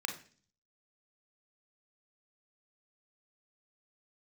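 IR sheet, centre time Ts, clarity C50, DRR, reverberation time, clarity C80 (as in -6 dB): 17 ms, 9.0 dB, 3.0 dB, 0.40 s, 15.0 dB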